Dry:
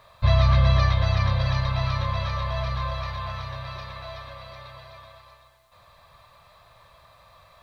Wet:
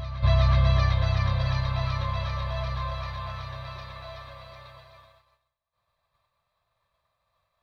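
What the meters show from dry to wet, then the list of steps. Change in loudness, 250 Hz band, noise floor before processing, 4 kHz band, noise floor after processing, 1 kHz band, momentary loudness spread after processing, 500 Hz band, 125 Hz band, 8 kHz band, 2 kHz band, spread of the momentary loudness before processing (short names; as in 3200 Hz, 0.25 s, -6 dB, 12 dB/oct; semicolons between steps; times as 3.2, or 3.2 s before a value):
-2.0 dB, -2.5 dB, -55 dBFS, -3.5 dB, -79 dBFS, -3.5 dB, 20 LU, -3.0 dB, -2.0 dB, n/a, -3.0 dB, 21 LU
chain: expander -41 dBFS; reverse echo 0.373 s -13 dB; gain -3.5 dB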